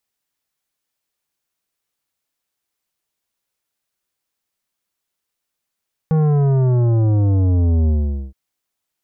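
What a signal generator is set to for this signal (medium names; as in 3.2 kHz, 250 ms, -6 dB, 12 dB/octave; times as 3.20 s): sub drop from 160 Hz, over 2.22 s, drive 11.5 dB, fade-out 0.45 s, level -13.5 dB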